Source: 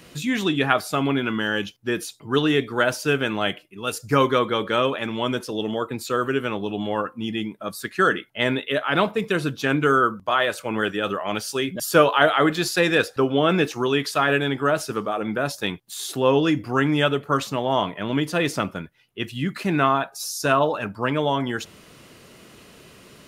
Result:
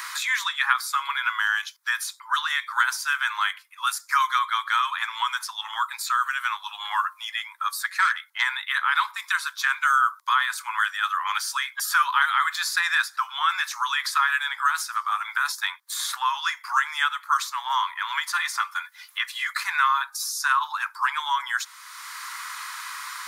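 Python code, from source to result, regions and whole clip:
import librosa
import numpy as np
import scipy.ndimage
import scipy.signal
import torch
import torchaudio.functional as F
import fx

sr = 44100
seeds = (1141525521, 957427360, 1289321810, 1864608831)

y = fx.chain(x, sr, fx.quant_float(bits=8),
    fx.transformer_sat(knee_hz=1100.0), at=(7.82, 8.42))
y = fx.chain(y, sr, fx.notch_comb(f0_hz=320.0),
    fx.band_squash(depth_pct=70), at=(18.33, 19.53))
y = scipy.signal.sosfilt(scipy.signal.butter(12, 960.0, 'highpass', fs=sr, output='sos'), y)
y = fx.peak_eq(y, sr, hz=2800.0, db=-14.5, octaves=0.36)
y = fx.band_squash(y, sr, depth_pct=70)
y = y * 10.0 ** (4.0 / 20.0)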